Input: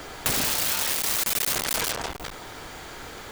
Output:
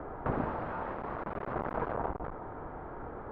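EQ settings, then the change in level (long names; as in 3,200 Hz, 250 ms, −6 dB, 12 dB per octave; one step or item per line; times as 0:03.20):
low-pass filter 1,200 Hz 24 dB per octave
0.0 dB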